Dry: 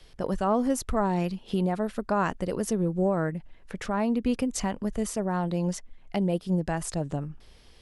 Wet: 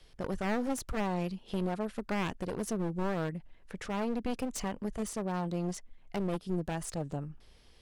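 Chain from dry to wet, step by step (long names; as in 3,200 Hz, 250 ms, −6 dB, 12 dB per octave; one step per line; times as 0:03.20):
wavefolder on the positive side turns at −28.5 dBFS
level −5.5 dB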